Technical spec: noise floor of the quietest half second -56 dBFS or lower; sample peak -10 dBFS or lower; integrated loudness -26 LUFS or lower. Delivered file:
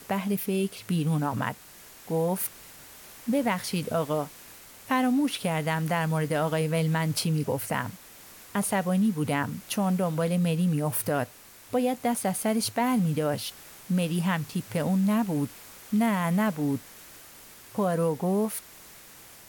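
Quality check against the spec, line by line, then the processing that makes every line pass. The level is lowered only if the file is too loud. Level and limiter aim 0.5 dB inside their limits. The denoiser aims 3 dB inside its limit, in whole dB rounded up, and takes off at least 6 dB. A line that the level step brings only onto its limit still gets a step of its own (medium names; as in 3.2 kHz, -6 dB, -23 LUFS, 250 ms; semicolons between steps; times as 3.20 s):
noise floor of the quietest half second -49 dBFS: fail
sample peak -14.0 dBFS: pass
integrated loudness -27.5 LUFS: pass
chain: noise reduction 10 dB, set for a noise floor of -49 dBFS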